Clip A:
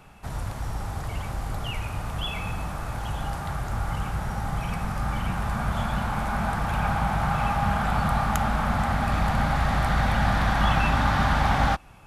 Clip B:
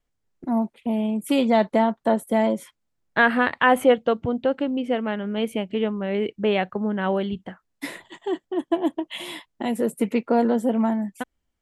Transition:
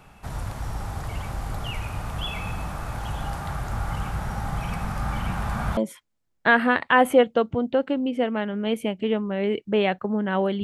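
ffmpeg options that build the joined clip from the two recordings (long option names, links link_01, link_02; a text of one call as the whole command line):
ffmpeg -i cue0.wav -i cue1.wav -filter_complex "[0:a]apad=whole_dur=10.63,atrim=end=10.63,atrim=end=5.772[link_01];[1:a]atrim=start=2.478:end=7.34[link_02];[link_01][link_02]acrossfade=duration=0.004:curve1=hsin:curve2=hsin" out.wav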